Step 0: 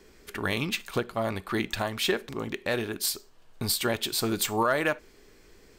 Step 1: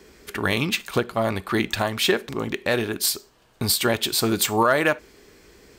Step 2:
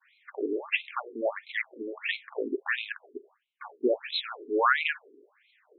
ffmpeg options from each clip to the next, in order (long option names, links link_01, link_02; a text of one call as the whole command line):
ffmpeg -i in.wav -af "highpass=45,volume=6dB" out.wav
ffmpeg -i in.wav -af "agate=range=-33dB:threshold=-46dB:ratio=3:detection=peak,afftfilt=real='re*between(b*sr/1024,320*pow(3000/320,0.5+0.5*sin(2*PI*1.5*pts/sr))/1.41,320*pow(3000/320,0.5+0.5*sin(2*PI*1.5*pts/sr))*1.41)':imag='im*between(b*sr/1024,320*pow(3000/320,0.5+0.5*sin(2*PI*1.5*pts/sr))/1.41,320*pow(3000/320,0.5+0.5*sin(2*PI*1.5*pts/sr))*1.41)':win_size=1024:overlap=0.75" out.wav